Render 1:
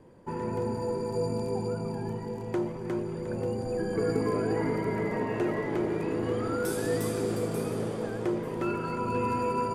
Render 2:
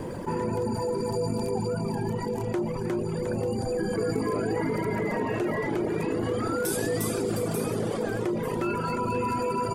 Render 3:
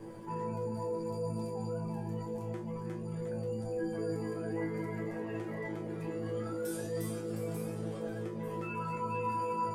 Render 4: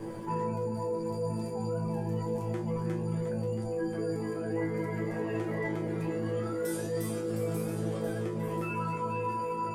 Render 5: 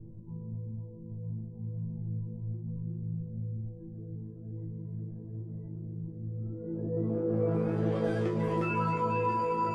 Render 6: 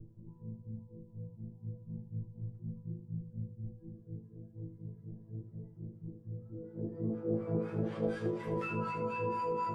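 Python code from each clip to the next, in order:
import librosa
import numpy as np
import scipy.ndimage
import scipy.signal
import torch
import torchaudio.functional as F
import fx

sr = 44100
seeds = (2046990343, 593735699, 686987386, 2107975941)

y1 = fx.dereverb_blind(x, sr, rt60_s=0.87)
y1 = fx.high_shelf(y1, sr, hz=5700.0, db=5.5)
y1 = fx.env_flatten(y1, sr, amount_pct=70)
y2 = fx.resonator_bank(y1, sr, root=45, chord='fifth', decay_s=0.33)
y3 = fx.rider(y2, sr, range_db=10, speed_s=0.5)
y3 = y3 + 10.0 ** (-12.0 / 20.0) * np.pad(y3, (int(1033 * sr / 1000.0), 0))[:len(y3)]
y3 = y3 * librosa.db_to_amplitude(4.0)
y4 = fx.filter_sweep_lowpass(y3, sr, from_hz=110.0, to_hz=4900.0, start_s=6.32, end_s=8.18, q=0.73)
y4 = y4 * librosa.db_to_amplitude(3.5)
y5 = fx.harmonic_tremolo(y4, sr, hz=4.1, depth_pct=100, crossover_hz=880.0)
y5 = y5 + 10.0 ** (-8.5 / 20.0) * np.pad(y5, (int(77 * sr / 1000.0), 0))[:len(y5)]
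y5 = y5 * librosa.db_to_amplitude(-1.5)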